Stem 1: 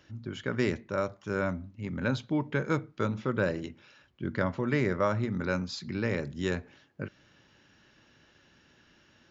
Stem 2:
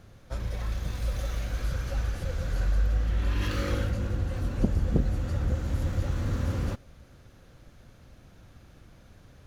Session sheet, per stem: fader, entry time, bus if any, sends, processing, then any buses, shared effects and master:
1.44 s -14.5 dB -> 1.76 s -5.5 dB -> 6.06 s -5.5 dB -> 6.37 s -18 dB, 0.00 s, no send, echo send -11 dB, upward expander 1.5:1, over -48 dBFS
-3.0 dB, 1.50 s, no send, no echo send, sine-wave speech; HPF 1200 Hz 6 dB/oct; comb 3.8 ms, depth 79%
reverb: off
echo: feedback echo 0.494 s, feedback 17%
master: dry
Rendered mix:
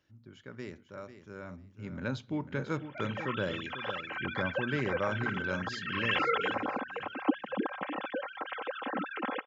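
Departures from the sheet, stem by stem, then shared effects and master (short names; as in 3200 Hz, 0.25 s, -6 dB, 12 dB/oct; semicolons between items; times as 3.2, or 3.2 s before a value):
stem 1: missing upward expander 1.5:1, over -48 dBFS; stem 2: entry 1.50 s -> 2.65 s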